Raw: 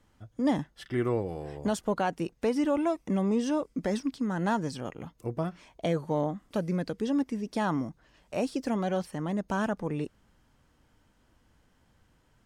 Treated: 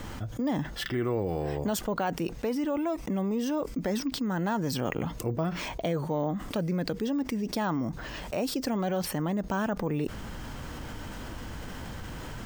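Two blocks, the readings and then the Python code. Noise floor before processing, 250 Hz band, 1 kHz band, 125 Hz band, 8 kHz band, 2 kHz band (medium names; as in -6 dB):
-67 dBFS, 0.0 dB, 0.0 dB, +2.0 dB, +6.0 dB, +1.5 dB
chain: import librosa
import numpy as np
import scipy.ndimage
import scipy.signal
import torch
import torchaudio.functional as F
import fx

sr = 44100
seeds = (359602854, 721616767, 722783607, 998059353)

y = fx.rider(x, sr, range_db=4, speed_s=0.5)
y = np.repeat(scipy.signal.resample_poly(y, 1, 2), 2)[:len(y)]
y = fx.env_flatten(y, sr, amount_pct=70)
y = F.gain(torch.from_numpy(y), -3.5).numpy()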